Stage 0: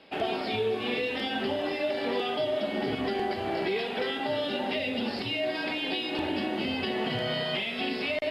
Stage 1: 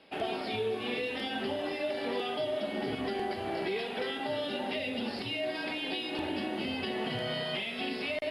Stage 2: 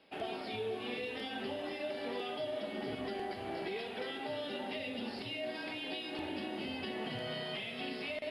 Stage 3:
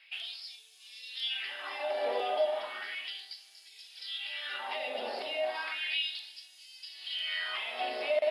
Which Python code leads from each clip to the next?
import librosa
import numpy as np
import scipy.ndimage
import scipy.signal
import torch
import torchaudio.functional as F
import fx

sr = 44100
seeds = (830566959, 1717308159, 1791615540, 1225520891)

y1 = fx.peak_eq(x, sr, hz=10000.0, db=11.0, octaves=0.2)
y1 = y1 * 10.0 ** (-4.0 / 20.0)
y2 = y1 + 10.0 ** (-12.5 / 20.0) * np.pad(y1, (int(486 * sr / 1000.0), 0))[:len(y1)]
y2 = y2 * 10.0 ** (-6.0 / 20.0)
y3 = fx.filter_lfo_highpass(y2, sr, shape='sine', hz=0.34, low_hz=600.0, high_hz=6500.0, q=3.3)
y3 = y3 * 10.0 ** (3.5 / 20.0)